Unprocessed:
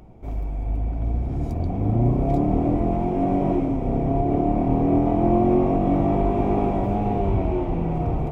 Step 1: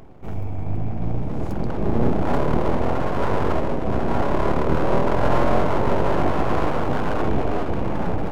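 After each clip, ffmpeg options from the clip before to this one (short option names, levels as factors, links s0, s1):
-af "areverse,acompressor=mode=upward:threshold=0.0141:ratio=2.5,areverse,aeval=exprs='abs(val(0))':c=same,volume=1.41"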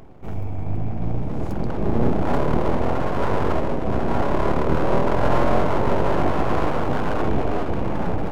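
-af anull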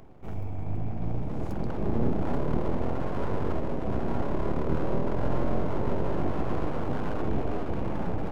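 -filter_complex "[0:a]acrossover=split=460[s0][s1];[s1]acompressor=threshold=0.0316:ratio=6[s2];[s0][s2]amix=inputs=2:normalize=0,volume=0.501"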